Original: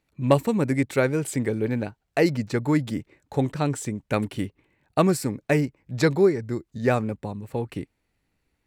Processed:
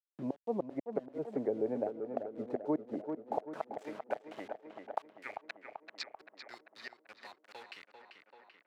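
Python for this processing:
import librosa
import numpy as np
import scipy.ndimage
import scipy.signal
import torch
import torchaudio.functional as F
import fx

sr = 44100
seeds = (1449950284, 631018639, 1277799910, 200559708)

y = fx.gate_flip(x, sr, shuts_db=-13.0, range_db=-36)
y = fx.filter_sweep_bandpass(y, sr, from_hz=680.0, to_hz=4700.0, start_s=4.93, end_s=5.49, q=3.7)
y = fx.quant_dither(y, sr, seeds[0], bits=10, dither='none')
y = fx.filter_sweep_bandpass(y, sr, from_hz=310.0, to_hz=1700.0, start_s=2.9, end_s=3.67, q=0.81)
y = fx.echo_tape(y, sr, ms=390, feedback_pct=65, wet_db=-7.5, lp_hz=2600.0, drive_db=29.0, wow_cents=27)
y = fx.band_squash(y, sr, depth_pct=40)
y = F.gain(torch.from_numpy(y), 8.0).numpy()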